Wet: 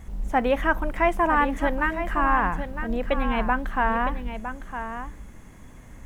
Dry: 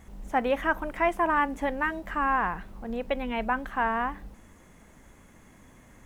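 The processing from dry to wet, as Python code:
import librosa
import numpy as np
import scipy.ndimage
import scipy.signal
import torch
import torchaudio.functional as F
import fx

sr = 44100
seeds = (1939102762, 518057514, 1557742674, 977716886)

y = fx.low_shelf(x, sr, hz=110.0, db=10.5)
y = y + 10.0 ** (-9.5 / 20.0) * np.pad(y, (int(959 * sr / 1000.0), 0))[:len(y)]
y = y * librosa.db_to_amplitude(3.0)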